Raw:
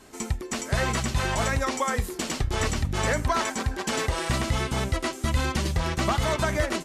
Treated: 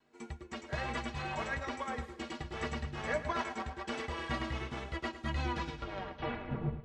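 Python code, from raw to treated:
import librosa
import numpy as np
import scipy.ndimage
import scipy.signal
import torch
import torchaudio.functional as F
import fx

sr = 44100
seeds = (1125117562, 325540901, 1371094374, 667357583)

p1 = fx.tape_stop_end(x, sr, length_s=1.44)
p2 = scipy.signal.sosfilt(scipy.signal.butter(2, 3300.0, 'lowpass', fs=sr, output='sos'), p1)
p3 = fx.low_shelf(p2, sr, hz=120.0, db=-11.5)
p4 = fx.stiff_resonator(p3, sr, f0_hz=70.0, decay_s=0.21, stiffness=0.03)
p5 = fx.vibrato(p4, sr, rate_hz=1.3, depth_cents=31.0)
p6 = p5 + fx.echo_feedback(p5, sr, ms=108, feedback_pct=60, wet_db=-10, dry=0)
y = fx.upward_expand(p6, sr, threshold_db=-52.0, expansion=1.5)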